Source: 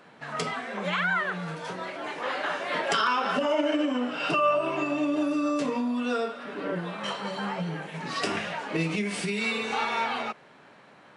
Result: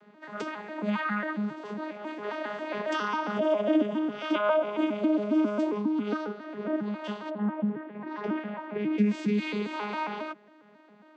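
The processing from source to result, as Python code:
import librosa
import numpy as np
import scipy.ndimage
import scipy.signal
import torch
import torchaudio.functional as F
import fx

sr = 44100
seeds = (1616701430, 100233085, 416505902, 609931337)

y = fx.vocoder_arp(x, sr, chord='bare fifth', root=56, every_ms=136)
y = fx.lowpass(y, sr, hz=fx.line((7.29, 1400.0), (8.97, 2500.0)), slope=12, at=(7.29, 8.97), fade=0.02)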